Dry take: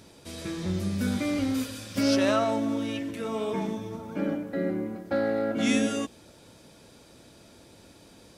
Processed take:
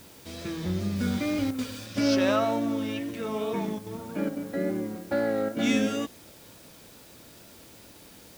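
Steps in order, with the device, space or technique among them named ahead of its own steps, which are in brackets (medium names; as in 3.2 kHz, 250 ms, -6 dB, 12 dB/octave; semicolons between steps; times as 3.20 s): worn cassette (low-pass 6.6 kHz; wow and flutter; level dips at 1.51/3.79/4.29/5.49 s, 74 ms -7 dB; white noise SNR 24 dB); 0.96–1.86 s: treble shelf 9.6 kHz +5 dB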